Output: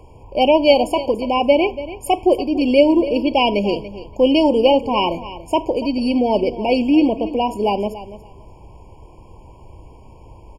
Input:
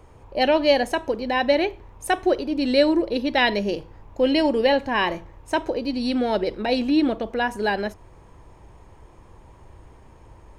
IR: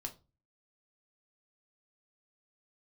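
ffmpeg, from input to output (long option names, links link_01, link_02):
-af "aecho=1:1:286|572:0.188|0.0339,afftfilt=real='re*eq(mod(floor(b*sr/1024/1100),2),0)':imag='im*eq(mod(floor(b*sr/1024/1100),2),0)':win_size=1024:overlap=0.75,volume=5.5dB"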